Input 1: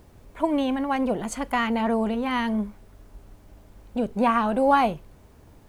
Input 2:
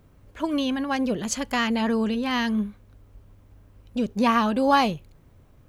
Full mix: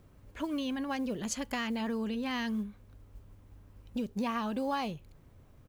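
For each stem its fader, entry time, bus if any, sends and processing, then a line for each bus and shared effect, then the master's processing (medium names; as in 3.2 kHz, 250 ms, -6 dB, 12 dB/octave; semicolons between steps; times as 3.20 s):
-18.5 dB, 0.00 s, no send, reverb removal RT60 1.5 s; modulation noise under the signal 16 dB
-3.5 dB, 0.4 ms, no send, none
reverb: none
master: compression 3:1, threshold -33 dBFS, peak gain reduction 11 dB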